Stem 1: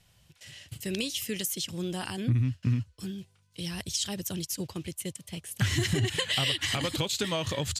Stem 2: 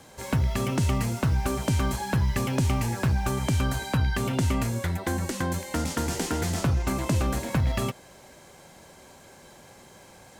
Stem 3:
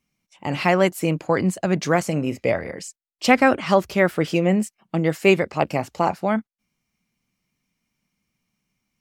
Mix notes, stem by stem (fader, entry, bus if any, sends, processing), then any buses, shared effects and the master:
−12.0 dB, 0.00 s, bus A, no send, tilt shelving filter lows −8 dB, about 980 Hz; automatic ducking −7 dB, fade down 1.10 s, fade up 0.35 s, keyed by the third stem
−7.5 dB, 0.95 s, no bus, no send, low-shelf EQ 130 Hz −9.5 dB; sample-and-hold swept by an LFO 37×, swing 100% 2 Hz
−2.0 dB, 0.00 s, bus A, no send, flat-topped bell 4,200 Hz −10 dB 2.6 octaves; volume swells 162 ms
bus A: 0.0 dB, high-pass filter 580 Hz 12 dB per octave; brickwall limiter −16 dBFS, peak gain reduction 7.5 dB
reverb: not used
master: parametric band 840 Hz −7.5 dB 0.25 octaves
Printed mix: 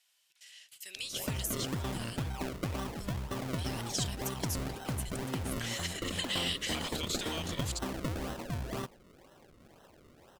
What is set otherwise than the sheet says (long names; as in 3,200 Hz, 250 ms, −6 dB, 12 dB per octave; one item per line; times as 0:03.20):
stem 3: muted
master: missing parametric band 840 Hz −7.5 dB 0.25 octaves